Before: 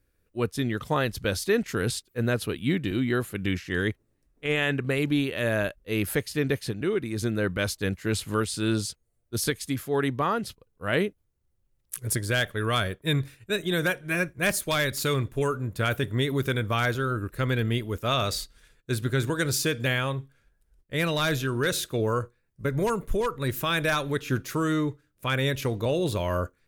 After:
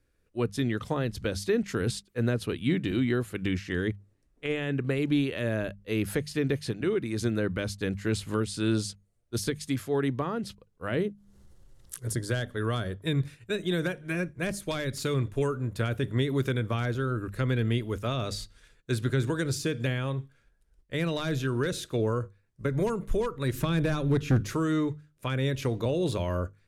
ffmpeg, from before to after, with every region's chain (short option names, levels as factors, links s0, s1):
-filter_complex "[0:a]asettb=1/sr,asplit=3[s0][s1][s2];[s0]atrim=end=11.004[s3];[s1]atrim=start=11:end=13.05,asetpts=PTS-STARTPTS,afade=t=in:d=0.004:c=qsin,afade=t=out:st=2.046:d=0.004:c=qsin,equalizer=f=2400:w=4.2:g=-8,bandreject=f=50:t=h:w=6,bandreject=f=100:t=h:w=6,bandreject=f=150:t=h:w=6,bandreject=f=200:t=h:w=6,bandreject=f=250:t=h:w=6,acompressor=mode=upward:threshold=0.0158:ratio=2.5:attack=3.2:release=140:knee=2.83:detection=peak[s4];[s2]atrim=start=13.046[s5];[s3][s4]acrossfade=d=0.004:c1=hsin:c2=qsin[s6];[s6][s5]acrossfade=d=0.004:c1=qsin:c2=hsin,asettb=1/sr,asplit=3[s7][s8][s9];[s7]atrim=end=23.544[s10];[s8]atrim=start=23.54:end=24.55,asetpts=PTS-STARTPTS,afade=t=in:d=0.004:c=qsin,afade=t=out:st=1.006:d=0.004:c=qsin,lowshelf=f=300:g=10.5,volume=6.68,asoftclip=hard,volume=0.15[s11];[s9]atrim=start=24.546[s12];[s10][s11]acrossfade=d=0.004:c1=hsin:c2=qsin[s13];[s13][s12]acrossfade=d=0.004:c1=qsin:c2=hsin,lowpass=9700,bandreject=f=50:t=h:w=6,bandreject=f=100:t=h:w=6,bandreject=f=150:t=h:w=6,bandreject=f=200:t=h:w=6,acrossover=split=460[s14][s15];[s15]acompressor=threshold=0.0224:ratio=6[s16];[s14][s16]amix=inputs=2:normalize=0"